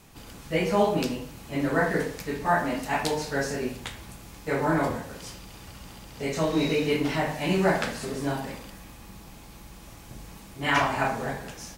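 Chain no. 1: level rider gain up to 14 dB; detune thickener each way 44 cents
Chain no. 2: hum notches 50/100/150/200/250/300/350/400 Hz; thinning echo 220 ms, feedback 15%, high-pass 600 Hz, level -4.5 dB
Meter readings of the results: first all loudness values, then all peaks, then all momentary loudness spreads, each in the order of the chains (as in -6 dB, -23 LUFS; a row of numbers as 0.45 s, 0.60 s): -21.0 LUFS, -27.0 LUFS; -2.0 dBFS, -8.5 dBFS; 19 LU, 22 LU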